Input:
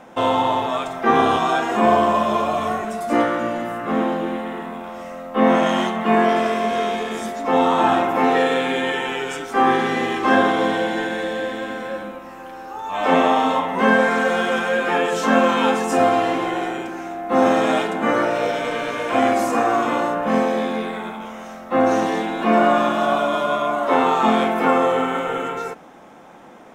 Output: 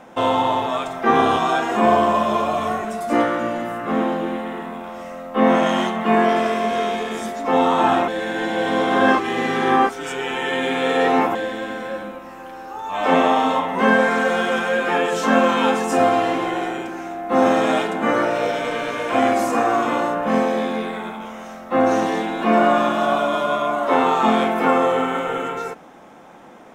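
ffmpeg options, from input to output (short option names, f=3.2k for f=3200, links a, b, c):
-filter_complex "[0:a]asplit=3[a][b][c];[a]atrim=end=8.082[d];[b]atrim=start=8.078:end=11.352,asetpts=PTS-STARTPTS,areverse[e];[c]atrim=start=11.348[f];[d][e]acrossfade=d=0.004:c1=hsin:c2=hsin[g];[g][f]acrossfade=d=0.004:c1=hsin:c2=hsin"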